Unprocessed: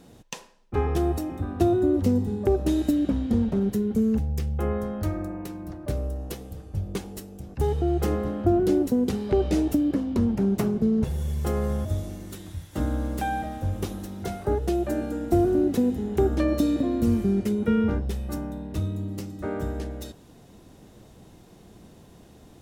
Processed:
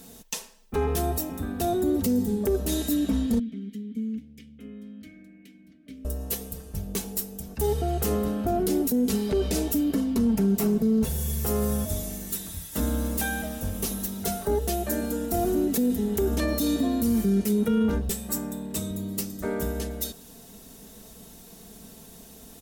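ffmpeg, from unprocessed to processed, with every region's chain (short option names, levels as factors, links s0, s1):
-filter_complex "[0:a]asettb=1/sr,asplit=3[s0][s1][s2];[s0]atrim=end=3.394[s3];[s1]atrim=start=3.39:end=6.05,asetpts=PTS-STARTPTS,afade=t=in:d=0.004:c=qsin,afade=t=out:st=2.656:d=0.004:c=qsin,asplit=3[s4][s5][s6];[s4]bandpass=f=270:t=q:w=8,volume=1[s7];[s5]bandpass=f=2290:t=q:w=8,volume=0.501[s8];[s6]bandpass=f=3010:t=q:w=8,volume=0.355[s9];[s7][s8][s9]amix=inputs=3:normalize=0,equalizer=f=350:t=o:w=0.4:g=-9.5[s10];[s2]atrim=start=6.046[s11];[s3][s10]acrossfade=d=0.004:c1=hsin:c2=qsin[s12];[s12][s11]acrossfade=d=0.004:c1=qsin:c2=hsin,asettb=1/sr,asplit=3[s13][s14][s15];[s13]atrim=end=18.094[s16];[s14]atrim=start=18.09:end=18.91,asetpts=PTS-STARTPTS,afade=t=in:d=0.004:c=qsin,afade=t=out:st=0.816:d=0.004:c=qsin,highpass=120,equalizer=f=7800:w=4.6:g=9.5[s17];[s15]atrim=start=18.906[s18];[s16][s17]acrossfade=d=0.004:c1=hsin:c2=qsin[s19];[s19][s18]acrossfade=d=0.004:c1=qsin:c2=hsin,aemphasis=mode=production:type=75fm,aecho=1:1:4.5:0.68,alimiter=limit=0.15:level=0:latency=1:release=11"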